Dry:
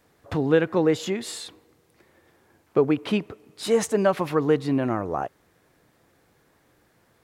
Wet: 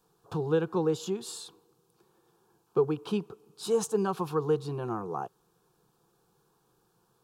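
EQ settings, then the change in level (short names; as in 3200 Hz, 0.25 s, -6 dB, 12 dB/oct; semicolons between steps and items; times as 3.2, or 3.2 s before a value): fixed phaser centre 400 Hz, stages 8; -4.0 dB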